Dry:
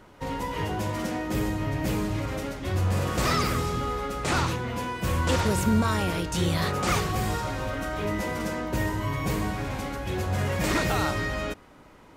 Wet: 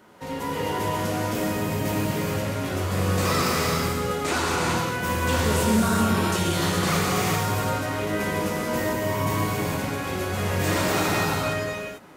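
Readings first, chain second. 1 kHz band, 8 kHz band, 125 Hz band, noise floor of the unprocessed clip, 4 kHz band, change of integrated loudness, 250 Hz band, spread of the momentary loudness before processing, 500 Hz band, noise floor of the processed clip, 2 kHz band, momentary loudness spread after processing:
+3.5 dB, +6.0 dB, +1.0 dB, -52 dBFS, +4.0 dB, +3.0 dB, +3.0 dB, 7 LU, +4.5 dB, -33 dBFS, +4.0 dB, 6 LU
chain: high-pass 120 Hz 12 dB/octave; treble shelf 10 kHz +7 dB; gated-style reverb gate 470 ms flat, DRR -5 dB; in parallel at -0.5 dB: peak limiter -12.5 dBFS, peak gain reduction 6 dB; on the sum: trim -7.5 dB

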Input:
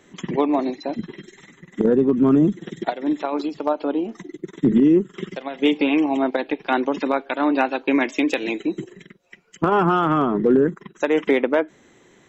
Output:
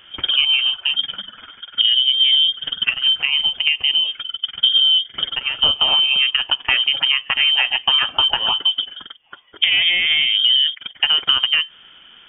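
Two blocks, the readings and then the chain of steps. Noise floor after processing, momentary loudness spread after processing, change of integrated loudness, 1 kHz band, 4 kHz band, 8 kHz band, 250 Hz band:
-47 dBFS, 9 LU, +6.0 dB, -6.0 dB, +27.0 dB, no reading, under -25 dB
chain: bass shelf 410 Hz +3 dB; compression 4:1, threshold -20 dBFS, peak gain reduction 9 dB; frequency inversion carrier 3.4 kHz; trim +6.5 dB

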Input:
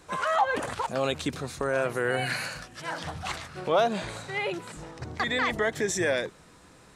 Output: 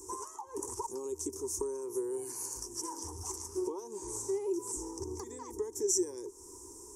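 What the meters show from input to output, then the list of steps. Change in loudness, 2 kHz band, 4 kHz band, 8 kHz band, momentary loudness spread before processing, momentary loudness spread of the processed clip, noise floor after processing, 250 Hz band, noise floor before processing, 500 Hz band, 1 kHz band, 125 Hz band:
-8.0 dB, under -30 dB, -13.0 dB, +4.5 dB, 11 LU, 11 LU, -51 dBFS, -5.5 dB, -54 dBFS, -7.5 dB, -15.0 dB, -14.0 dB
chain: compression 6:1, threshold -37 dBFS, peak gain reduction 17 dB; FFT filter 100 Hz 0 dB, 150 Hz -26 dB, 390 Hz +14 dB, 650 Hz -28 dB, 940 Hz +5 dB, 1.4 kHz -24 dB, 4 kHz -25 dB, 5.7 kHz +13 dB

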